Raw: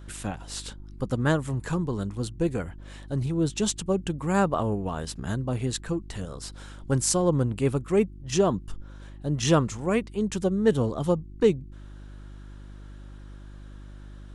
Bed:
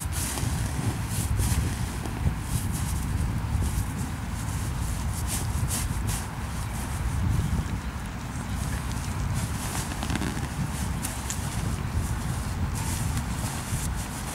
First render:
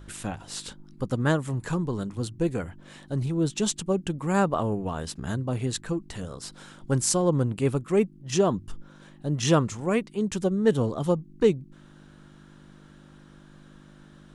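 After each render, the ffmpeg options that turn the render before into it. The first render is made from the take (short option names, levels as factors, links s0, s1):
-af "bandreject=f=50:t=h:w=4,bandreject=f=100:t=h:w=4"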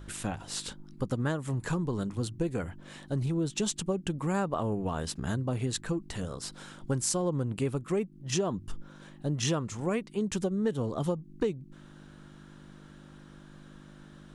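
-af "acompressor=threshold=0.0501:ratio=6"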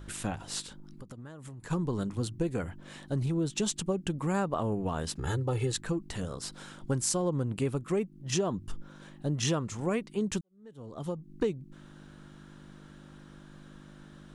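-filter_complex "[0:a]asplit=3[s0][s1][s2];[s0]afade=t=out:st=0.61:d=0.02[s3];[s1]acompressor=threshold=0.00891:ratio=10:attack=3.2:release=140:knee=1:detection=peak,afade=t=in:st=0.61:d=0.02,afade=t=out:st=1.7:d=0.02[s4];[s2]afade=t=in:st=1.7:d=0.02[s5];[s3][s4][s5]amix=inputs=3:normalize=0,asettb=1/sr,asplit=3[s6][s7][s8];[s6]atrim=end=5.194[s9];[s7]atrim=start=5.19:end=5.72,asetpts=PTS-STARTPTS,afade=t=in:d=0.004:c=qsin,afade=t=out:st=0.526:d=0.004:c=qsin,aecho=1:1:2.3:0.89,atrim=end_sample=23373[s10];[s8]atrim=start=5.716[s11];[s9][s10]acrossfade=d=0.004:c1=hsin:c2=qsin[s12];[s12][s11]acrossfade=d=0.004:c1=qsin:c2=hsin,asplit=2[s13][s14];[s13]atrim=end=10.41,asetpts=PTS-STARTPTS,afade=t=out:st=10.406:d=0.004:c=hsin[s15];[s14]atrim=start=10.41,asetpts=PTS-STARTPTS,afade=t=in:d=0.92:c=qua[s16];[s15][s16]concat=n=2:v=0:a=1"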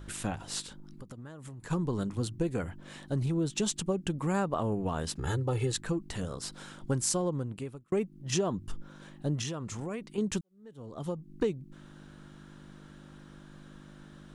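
-filter_complex "[0:a]asettb=1/sr,asplit=3[s0][s1][s2];[s0]atrim=end=9.414[s3];[s1]atrim=start=9.41:end=10.18,asetpts=PTS-STARTPTS,afade=t=in:d=0.004:c=qsin,afade=t=out:st=0.766:d=0.004:c=qsin,acompressor=threshold=0.0251:ratio=6:attack=3.2:release=140:knee=1:detection=peak[s4];[s2]atrim=start=10.176[s5];[s3][s4]acrossfade=d=0.004:c1=hsin:c2=qsin[s6];[s6][s5]acrossfade=d=0.004:c1=qsin:c2=hsin,asplit=2[s7][s8];[s7]atrim=end=7.92,asetpts=PTS-STARTPTS,afade=t=out:st=7.16:d=0.76[s9];[s8]atrim=start=7.92,asetpts=PTS-STARTPTS,afade=t=in:d=0.004:c=hsin[s10];[s9][s10]concat=n=2:v=0:a=1"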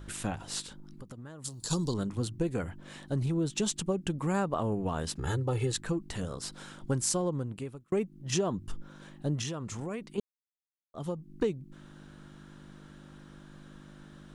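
-filter_complex "[0:a]asettb=1/sr,asplit=3[s0][s1][s2];[s0]atrim=end=1.444[s3];[s1]atrim=start=1.44:end=1.94,asetpts=PTS-STARTPTS,afade=t=in:d=0.004:c=qsin,afade=t=out:st=0.496:d=0.004:c=qsin,highshelf=f=3100:t=q:w=3:g=13.5[s4];[s2]atrim=start=1.936[s5];[s3][s4]acrossfade=d=0.004:c1=hsin:c2=qsin[s6];[s6][s5]acrossfade=d=0.004:c1=qsin:c2=hsin,asplit=3[s7][s8][s9];[s7]atrim=end=10.2,asetpts=PTS-STARTPTS,afade=t=out:st=10.196:d=0.004:c=hsin[s10];[s8]atrim=start=10.2:end=10.94,asetpts=PTS-STARTPTS,volume=0[s11];[s9]atrim=start=10.94,asetpts=PTS-STARTPTS,afade=t=in:d=0.004:c=hsin[s12];[s10][s11][s12]concat=n=3:v=0:a=1"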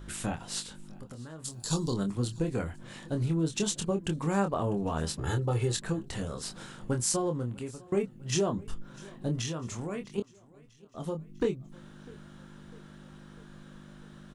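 -filter_complex "[0:a]asplit=2[s0][s1];[s1]adelay=25,volume=0.501[s2];[s0][s2]amix=inputs=2:normalize=0,aecho=1:1:649|1298|1947|2596:0.0668|0.0388|0.0225|0.013"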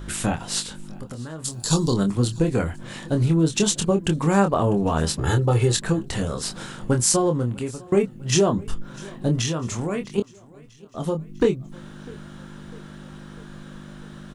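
-af "volume=2.99"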